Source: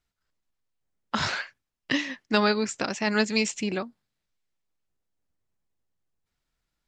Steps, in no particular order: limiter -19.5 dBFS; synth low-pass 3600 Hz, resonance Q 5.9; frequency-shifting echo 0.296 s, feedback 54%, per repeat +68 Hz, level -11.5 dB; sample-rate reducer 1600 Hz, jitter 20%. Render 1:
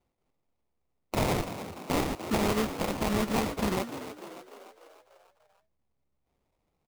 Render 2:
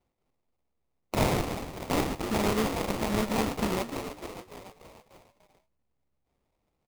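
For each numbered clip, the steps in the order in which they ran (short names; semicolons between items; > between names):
synth low-pass > sample-rate reducer > limiter > frequency-shifting echo; frequency-shifting echo > limiter > synth low-pass > sample-rate reducer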